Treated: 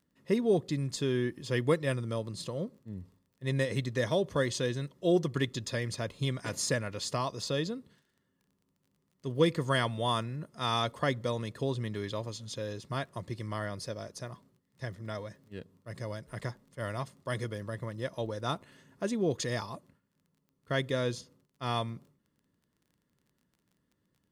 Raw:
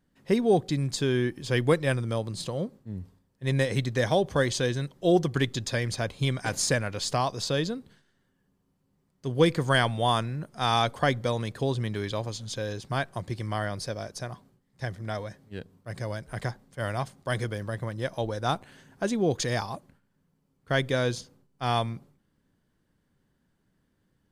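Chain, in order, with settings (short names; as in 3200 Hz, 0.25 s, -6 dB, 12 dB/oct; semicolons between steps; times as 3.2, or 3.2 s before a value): notch comb 780 Hz; crackle 22/s -50 dBFS; gain -4 dB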